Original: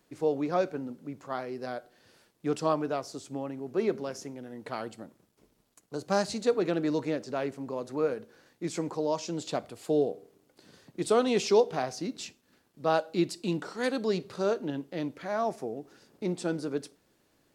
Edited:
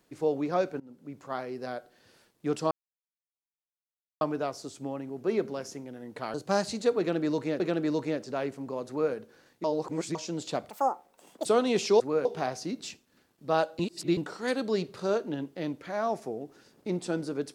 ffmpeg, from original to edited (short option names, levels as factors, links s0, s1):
-filter_complex "[0:a]asplit=13[s0][s1][s2][s3][s4][s5][s6][s7][s8][s9][s10][s11][s12];[s0]atrim=end=0.8,asetpts=PTS-STARTPTS,afade=t=out:st=0.796:d=0.004:c=hsin:silence=0.0841395[s13];[s1]atrim=start=0.8:end=2.71,asetpts=PTS-STARTPTS,afade=t=in:d=0.6:c=qsin:silence=0.0841395,afade=t=out:st=1.906:d=0.004:c=hsin,apad=pad_dur=1.5[s14];[s2]atrim=start=2.71:end=4.842,asetpts=PTS-STARTPTS,afade=t=in:d=0.004:c=hsin[s15];[s3]atrim=start=5.948:end=7.212[s16];[s4]atrim=start=6.598:end=8.642[s17];[s5]atrim=start=8.638:end=9.152,asetpts=PTS-STARTPTS,areverse[s18];[s6]atrim=start=9.148:end=9.704[s19];[s7]atrim=start=9.7:end=11.06,asetpts=PTS-STARTPTS,asetrate=79821,aresample=44100[s20];[s8]atrim=start=11.056:end=11.612[s21];[s9]atrim=start=7.878:end=8.132[s22];[s10]atrim=start=11.608:end=13.152[s23];[s11]atrim=start=13.148:end=13.532,asetpts=PTS-STARTPTS,areverse[s24];[s12]atrim=start=13.528[s25];[s13][s14][s15]concat=n=3:v=0:a=1[s26];[s26][s16]acrossfade=d=0.004:c1=hsin:c2=hsin[s27];[s27][s17]acrossfade=d=0.004:c1=hsin:c2=hsin[s28];[s28][s18]acrossfade=d=0.004:c1=hsin:c2=hsin[s29];[s29][s19]acrossfade=d=0.004:c1=hsin:c2=hsin[s30];[s30][s20]acrossfade=d=0.004:c1=hsin:c2=hsin[s31];[s31][s21]acrossfade=d=0.004:c1=hsin:c2=hsin[s32];[s32][s22]acrossfade=d=0.004:c1=hsin:c2=hsin[s33];[s33][s23]acrossfade=d=0.004:c1=hsin:c2=hsin[s34];[s34][s24]acrossfade=d=0.004:c1=hsin:c2=hsin[s35];[s35][s25]acrossfade=d=0.004:c1=hsin:c2=hsin"